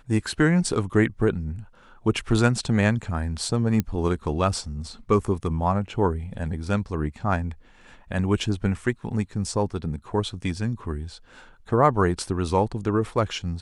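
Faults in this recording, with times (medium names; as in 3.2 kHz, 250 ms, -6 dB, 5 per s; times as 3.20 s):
3.80 s: pop -11 dBFS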